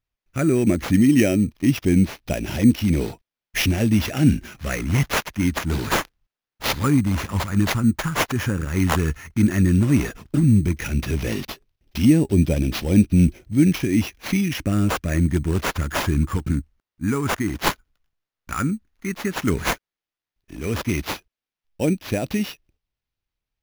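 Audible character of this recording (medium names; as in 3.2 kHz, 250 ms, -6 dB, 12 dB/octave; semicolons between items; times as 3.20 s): phasing stages 4, 0.1 Hz, lowest notch 600–1200 Hz; aliases and images of a low sample rate 8.4 kHz, jitter 0%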